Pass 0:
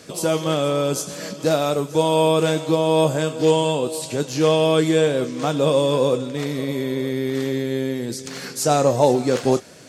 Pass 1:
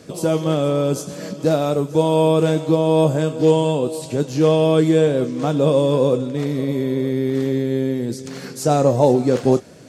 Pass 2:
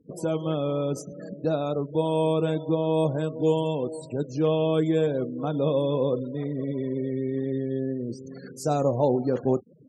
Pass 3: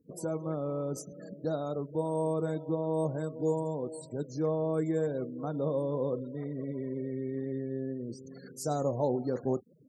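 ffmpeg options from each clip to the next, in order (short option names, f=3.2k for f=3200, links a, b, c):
-af "tiltshelf=f=720:g=5"
-af "afftfilt=real='re*gte(hypot(re,im),0.0316)':imag='im*gte(hypot(re,im),0.0316)':win_size=1024:overlap=0.75,volume=-8dB"
-af "asuperstop=centerf=2900:order=12:qfactor=1.9,highshelf=f=7.1k:g=10,volume=-7dB"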